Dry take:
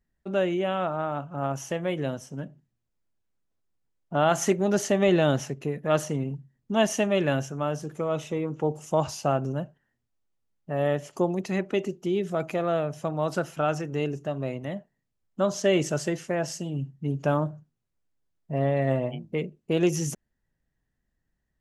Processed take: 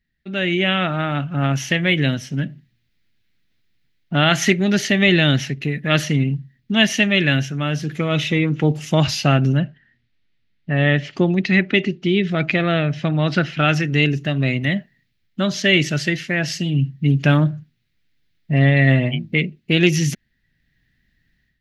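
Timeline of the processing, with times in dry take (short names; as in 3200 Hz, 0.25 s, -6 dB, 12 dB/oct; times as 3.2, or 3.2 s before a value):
9.57–13.6 air absorption 120 m
whole clip: graphic EQ 125/250/500/1000/2000/4000/8000 Hz +4/+3/-7/-11/+12/+11/-10 dB; AGC gain up to 11.5 dB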